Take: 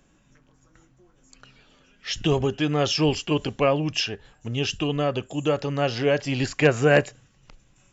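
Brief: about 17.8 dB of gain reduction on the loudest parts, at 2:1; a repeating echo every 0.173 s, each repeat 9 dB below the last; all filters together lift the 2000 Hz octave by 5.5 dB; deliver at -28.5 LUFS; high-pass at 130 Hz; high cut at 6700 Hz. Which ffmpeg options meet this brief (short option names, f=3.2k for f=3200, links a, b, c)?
-af "highpass=130,lowpass=6.7k,equalizer=f=2k:t=o:g=7.5,acompressor=threshold=-45dB:ratio=2,aecho=1:1:173|346|519|692:0.355|0.124|0.0435|0.0152,volume=8dB"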